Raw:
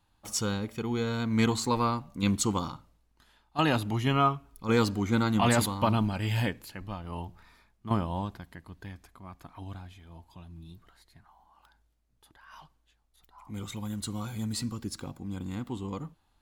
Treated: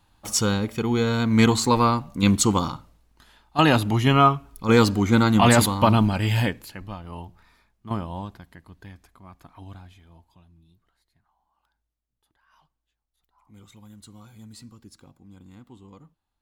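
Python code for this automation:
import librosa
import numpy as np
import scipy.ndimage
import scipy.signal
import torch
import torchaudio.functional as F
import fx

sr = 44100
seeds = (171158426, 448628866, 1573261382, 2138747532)

y = fx.gain(x, sr, db=fx.line((6.16, 8.0), (7.26, -0.5), (9.98, -0.5), (10.68, -11.5)))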